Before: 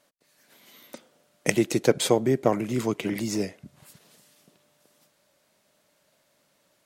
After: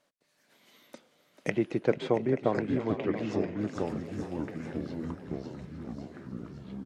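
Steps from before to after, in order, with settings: treble shelf 8.9 kHz -11 dB; frequency-shifting echo 440 ms, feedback 58%, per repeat +40 Hz, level -11.5 dB; low-pass that closes with the level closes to 2.3 kHz, closed at -23 dBFS; delay 679 ms -14.5 dB; ever faster or slower copies 706 ms, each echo -4 st, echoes 3, each echo -6 dB; trim -5.5 dB

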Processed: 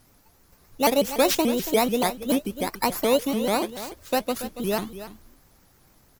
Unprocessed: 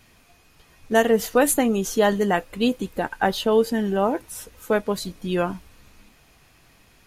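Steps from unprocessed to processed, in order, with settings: bit-reversed sample order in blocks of 16 samples; delay 321 ms -13 dB; wide varispeed 1.14×; vibrato with a chosen wave saw up 6.9 Hz, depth 250 cents; trim -2 dB

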